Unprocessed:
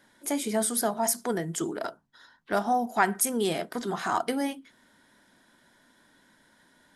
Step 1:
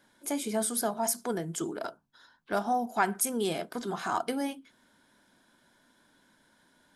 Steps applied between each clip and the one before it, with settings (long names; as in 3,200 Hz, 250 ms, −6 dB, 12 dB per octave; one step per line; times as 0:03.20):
notch filter 1,900 Hz, Q 9.8
level −3 dB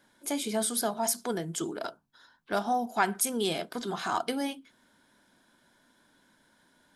dynamic equaliser 3,700 Hz, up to +6 dB, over −53 dBFS, Q 1.2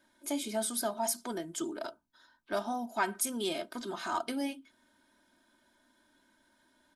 comb filter 3.2 ms, depth 63%
level −5.5 dB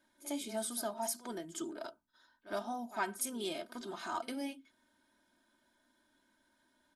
echo ahead of the sound 59 ms −16 dB
level −5 dB